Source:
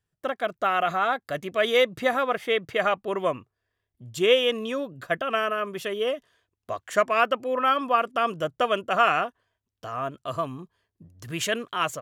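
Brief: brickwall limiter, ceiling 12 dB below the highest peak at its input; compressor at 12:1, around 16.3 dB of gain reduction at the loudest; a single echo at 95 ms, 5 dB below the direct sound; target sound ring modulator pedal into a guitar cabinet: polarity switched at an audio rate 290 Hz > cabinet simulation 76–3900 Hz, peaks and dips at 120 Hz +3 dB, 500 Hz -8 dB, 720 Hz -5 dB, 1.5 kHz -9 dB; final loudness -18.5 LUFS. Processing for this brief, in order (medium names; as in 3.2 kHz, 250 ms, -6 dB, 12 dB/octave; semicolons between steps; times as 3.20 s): compression 12:1, threshold -32 dBFS; peak limiter -32.5 dBFS; delay 95 ms -5 dB; polarity switched at an audio rate 290 Hz; cabinet simulation 76–3900 Hz, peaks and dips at 120 Hz +3 dB, 500 Hz -8 dB, 720 Hz -5 dB, 1.5 kHz -9 dB; trim +25 dB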